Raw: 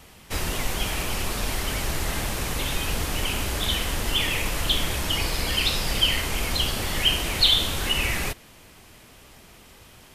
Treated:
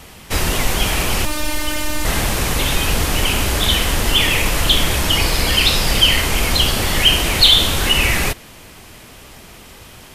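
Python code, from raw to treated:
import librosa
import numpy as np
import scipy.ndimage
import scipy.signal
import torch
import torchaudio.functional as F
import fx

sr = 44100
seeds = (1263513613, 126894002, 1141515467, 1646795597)

p1 = fx.robotise(x, sr, hz=303.0, at=(1.25, 2.05))
p2 = fx.fold_sine(p1, sr, drive_db=5, ceiling_db=-5.5)
y = p1 + F.gain(torch.from_numpy(p2), -3.0).numpy()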